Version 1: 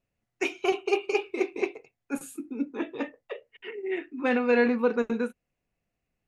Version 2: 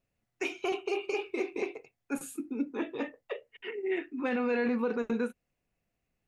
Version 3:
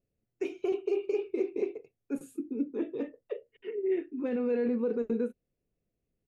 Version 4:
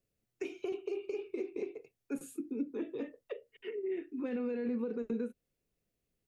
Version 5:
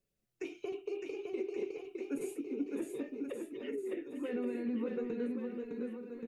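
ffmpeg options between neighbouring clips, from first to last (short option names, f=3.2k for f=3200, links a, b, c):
-af "alimiter=limit=-22dB:level=0:latency=1:release=54"
-af "firequalizer=gain_entry='entry(250,0);entry(420,4);entry(800,-12)':delay=0.05:min_phase=1"
-filter_complex "[0:a]tiltshelf=f=970:g=-4,acrossover=split=270[a][b];[b]acompressor=threshold=-39dB:ratio=6[c];[a][c]amix=inputs=2:normalize=0,volume=1dB"
-filter_complex "[0:a]flanger=delay=5.1:depth=1.8:regen=-39:speed=0.65:shape=sinusoidal,asplit=2[a][b];[b]aecho=0:1:610|1128|1569|1944|2262:0.631|0.398|0.251|0.158|0.1[c];[a][c]amix=inputs=2:normalize=0,volume=2.5dB"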